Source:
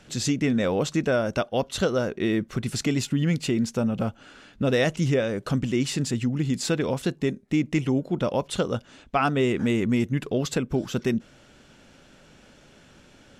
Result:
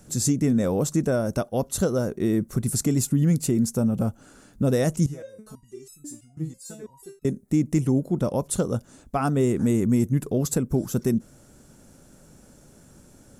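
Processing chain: FFT filter 150 Hz 0 dB, 1.2 kHz -8 dB, 3 kHz -18 dB, 10 kHz +10 dB; 5.06–7.25 s: resonator arpeggio 6.1 Hz 160–1300 Hz; trim +4 dB

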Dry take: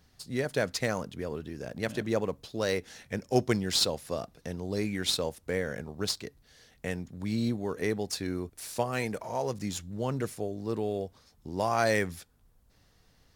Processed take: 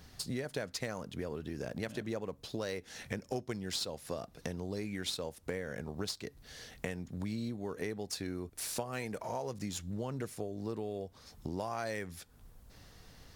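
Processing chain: compression 6:1, threshold -44 dBFS, peak gain reduction 23.5 dB; trim +8 dB

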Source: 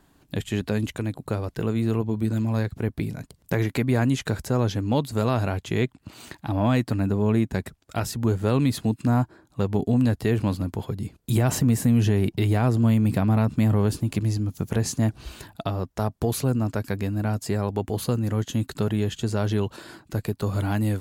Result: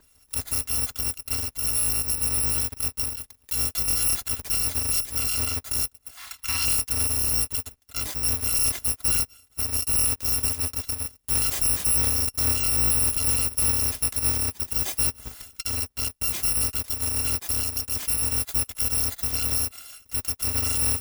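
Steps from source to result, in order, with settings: bit-reversed sample order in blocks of 256 samples; 6.17–6.65 s: ten-band graphic EQ 125 Hz -5 dB, 500 Hz -12 dB, 1 kHz +10 dB, 2 kHz +7 dB, 4 kHz +6 dB; peak limiter -15 dBFS, peak gain reduction 6 dB

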